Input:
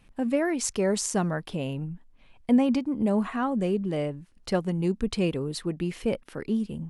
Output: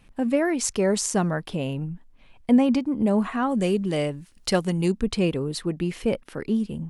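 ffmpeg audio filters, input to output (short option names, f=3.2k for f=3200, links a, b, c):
-filter_complex "[0:a]asplit=3[a][b][c];[a]afade=t=out:st=3.49:d=0.02[d];[b]highshelf=f=2.4k:g=10.5,afade=t=in:st=3.49:d=0.02,afade=t=out:st=4.91:d=0.02[e];[c]afade=t=in:st=4.91:d=0.02[f];[d][e][f]amix=inputs=3:normalize=0,volume=3dB"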